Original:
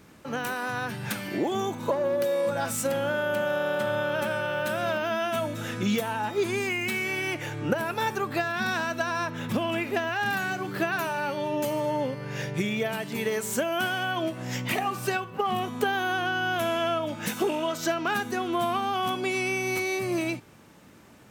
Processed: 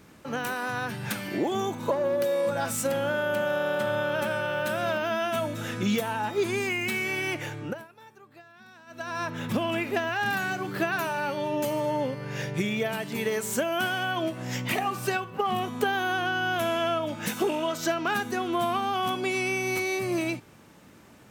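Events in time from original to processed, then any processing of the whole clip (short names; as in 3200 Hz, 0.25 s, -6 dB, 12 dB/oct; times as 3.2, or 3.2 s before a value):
7.42–9.32 dip -23.5 dB, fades 0.46 s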